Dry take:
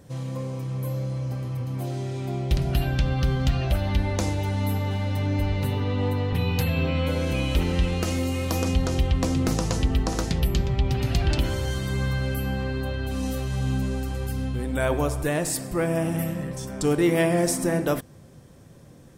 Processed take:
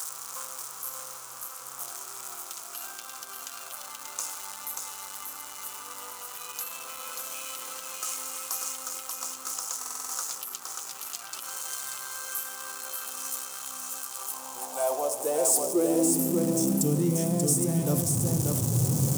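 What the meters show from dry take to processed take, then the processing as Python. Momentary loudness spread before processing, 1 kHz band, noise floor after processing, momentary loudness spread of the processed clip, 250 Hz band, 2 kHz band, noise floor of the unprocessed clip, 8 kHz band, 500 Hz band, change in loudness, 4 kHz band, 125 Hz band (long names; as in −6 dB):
6 LU, −4.5 dB, −43 dBFS, 14 LU, −4.5 dB, −10.0 dB, −48 dBFS, +7.5 dB, −5.0 dB, −4.0 dB, −5.0 dB, −9.0 dB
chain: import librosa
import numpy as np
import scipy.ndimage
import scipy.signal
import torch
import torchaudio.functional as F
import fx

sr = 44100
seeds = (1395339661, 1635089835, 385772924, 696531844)

p1 = x + 0.5 * 10.0 ** (-25.0 / 20.0) * np.sign(x)
p2 = fx.peak_eq(p1, sr, hz=1800.0, db=-14.0, octaves=1.1)
p3 = fx.notch(p2, sr, hz=610.0, q=12.0)
p4 = fx.rider(p3, sr, range_db=5, speed_s=0.5)
p5 = fx.filter_sweep_highpass(p4, sr, from_hz=1300.0, to_hz=120.0, start_s=14.05, end_s=17.33, q=4.0)
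p6 = fx.high_shelf_res(p5, sr, hz=5300.0, db=9.0, q=1.5)
p7 = p6 + fx.echo_single(p6, sr, ms=585, db=-4.0, dry=0)
p8 = fx.buffer_glitch(p7, sr, at_s=(9.78,), block=2048, repeats=6)
y = p8 * librosa.db_to_amplitude(-8.0)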